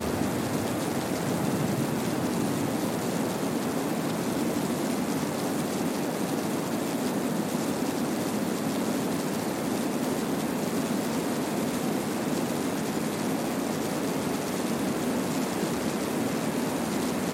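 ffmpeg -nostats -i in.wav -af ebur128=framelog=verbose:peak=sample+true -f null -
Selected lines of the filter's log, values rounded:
Integrated loudness:
  I:         -28.7 LUFS
  Threshold: -38.7 LUFS
Loudness range:
  LRA:         0.5 LU
  Threshold: -48.7 LUFS
  LRA low:   -28.9 LUFS
  LRA high:  -28.4 LUFS
Sample peak:
  Peak:      -13.8 dBFS
True peak:
  Peak:      -13.7 dBFS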